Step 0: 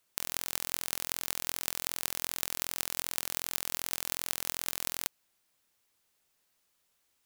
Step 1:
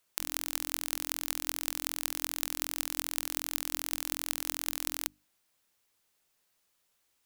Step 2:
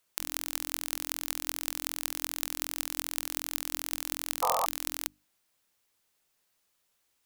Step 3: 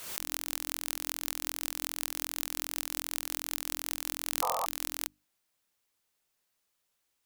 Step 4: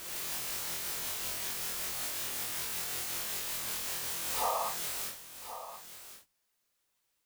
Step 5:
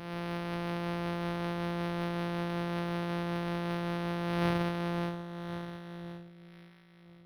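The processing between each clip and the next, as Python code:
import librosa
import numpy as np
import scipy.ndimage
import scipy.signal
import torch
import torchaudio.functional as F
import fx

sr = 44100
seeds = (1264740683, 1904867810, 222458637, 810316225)

y1 = fx.hum_notches(x, sr, base_hz=50, count=6)
y2 = fx.spec_paint(y1, sr, seeds[0], shape='noise', start_s=4.42, length_s=0.24, low_hz=460.0, high_hz=1300.0, level_db=-28.0)
y3 = fx.pre_swell(y2, sr, db_per_s=59.0)
y3 = y3 * librosa.db_to_amplitude(-4.0)
y4 = fx.phase_scramble(y3, sr, seeds[1], window_ms=200)
y4 = y4 + 10.0 ** (-12.0 / 20.0) * np.pad(y4, (int(1076 * sr / 1000.0), 0))[:len(y4)]
y5 = np.r_[np.sort(y4[:len(y4) // 256 * 256].reshape(-1, 256), axis=1).ravel(), y4[len(y4) // 256 * 256:]]
y5 = fx.echo_alternate(y5, sr, ms=528, hz=1400.0, feedback_pct=63, wet_db=-12.5)
y5 = np.interp(np.arange(len(y5)), np.arange(len(y5))[::6], y5[::6])
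y5 = y5 * librosa.db_to_amplitude(1.5)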